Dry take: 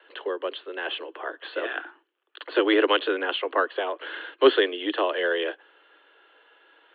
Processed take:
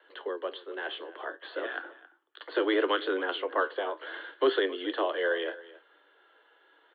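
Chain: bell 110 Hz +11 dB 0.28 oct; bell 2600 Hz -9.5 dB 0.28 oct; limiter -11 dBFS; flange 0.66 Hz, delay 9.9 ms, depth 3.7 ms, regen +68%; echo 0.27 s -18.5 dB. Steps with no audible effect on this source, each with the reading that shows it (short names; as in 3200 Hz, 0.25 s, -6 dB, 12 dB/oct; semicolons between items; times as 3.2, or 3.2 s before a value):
bell 110 Hz: input band starts at 250 Hz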